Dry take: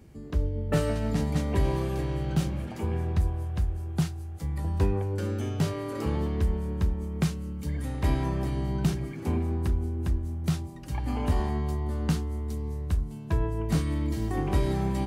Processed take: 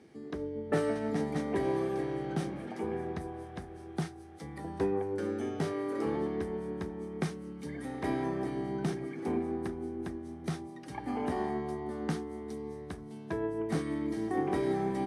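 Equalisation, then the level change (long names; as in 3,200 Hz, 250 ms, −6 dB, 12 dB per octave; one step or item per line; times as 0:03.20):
high-shelf EQ 6,600 Hz −8 dB
dynamic equaliser 3,900 Hz, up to −8 dB, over −57 dBFS, Q 0.78
loudspeaker in its box 350–9,700 Hz, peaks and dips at 580 Hz −8 dB, 1,000 Hz −8 dB, 1,400 Hz −5 dB, 2,700 Hz −8 dB, 4,500 Hz −3 dB, 7,200 Hz −10 dB
+5.0 dB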